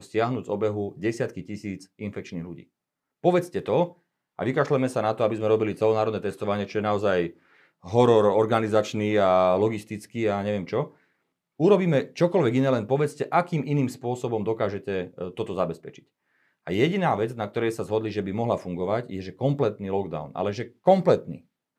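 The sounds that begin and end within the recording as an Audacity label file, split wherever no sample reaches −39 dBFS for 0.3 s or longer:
3.240000	3.910000	sound
4.390000	7.310000	sound
7.840000	10.880000	sound
11.600000	15.990000	sound
16.670000	21.370000	sound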